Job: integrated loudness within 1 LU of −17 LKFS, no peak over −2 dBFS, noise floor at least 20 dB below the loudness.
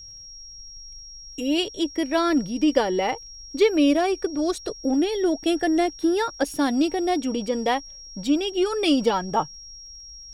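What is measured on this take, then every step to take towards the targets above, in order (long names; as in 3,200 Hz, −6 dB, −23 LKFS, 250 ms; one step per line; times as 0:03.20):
crackle rate 19 per second; interfering tone 5,600 Hz; level of the tone −40 dBFS; integrated loudness −23.5 LKFS; sample peak −7.0 dBFS; target loudness −17.0 LKFS
→ click removal
notch filter 5,600 Hz, Q 30
level +6.5 dB
brickwall limiter −2 dBFS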